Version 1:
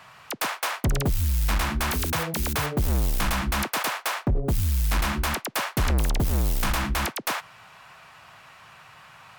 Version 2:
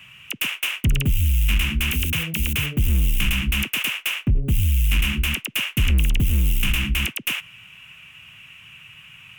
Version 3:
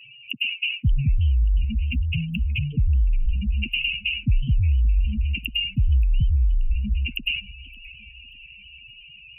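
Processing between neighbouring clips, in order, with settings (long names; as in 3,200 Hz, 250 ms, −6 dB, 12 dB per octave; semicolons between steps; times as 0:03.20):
drawn EQ curve 110 Hz 0 dB, 240 Hz −3 dB, 760 Hz −22 dB, 1,800 Hz −8 dB, 2,800 Hz +10 dB, 4,300 Hz −17 dB, 6,200 Hz −6 dB, 14,000 Hz −1 dB; level +5 dB
expanding power law on the bin magnitudes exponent 3.7; feedback echo with a swinging delay time 578 ms, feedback 45%, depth 152 cents, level −21.5 dB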